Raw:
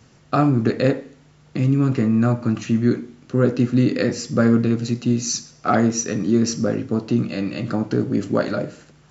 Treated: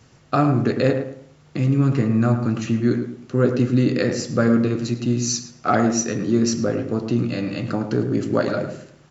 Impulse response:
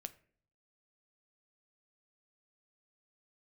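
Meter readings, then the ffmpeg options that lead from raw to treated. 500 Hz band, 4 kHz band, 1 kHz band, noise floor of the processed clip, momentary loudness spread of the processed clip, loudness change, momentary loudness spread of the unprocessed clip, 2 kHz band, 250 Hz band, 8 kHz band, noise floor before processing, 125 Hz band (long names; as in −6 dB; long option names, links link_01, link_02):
+0.5 dB, 0.0 dB, +0.5 dB, −52 dBFS, 7 LU, −0.5 dB, 7 LU, +0.5 dB, −1.0 dB, can't be measured, −52 dBFS, 0.0 dB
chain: -filter_complex "[0:a]equalizer=frequency=210:width=2.3:gain=-3.5,asplit=2[link_01][link_02];[link_02]adelay=108,lowpass=frequency=1600:poles=1,volume=-7.5dB,asplit=2[link_03][link_04];[link_04]adelay=108,lowpass=frequency=1600:poles=1,volume=0.32,asplit=2[link_05][link_06];[link_06]adelay=108,lowpass=frequency=1600:poles=1,volume=0.32,asplit=2[link_07][link_08];[link_08]adelay=108,lowpass=frequency=1600:poles=1,volume=0.32[link_09];[link_01][link_03][link_05][link_07][link_09]amix=inputs=5:normalize=0"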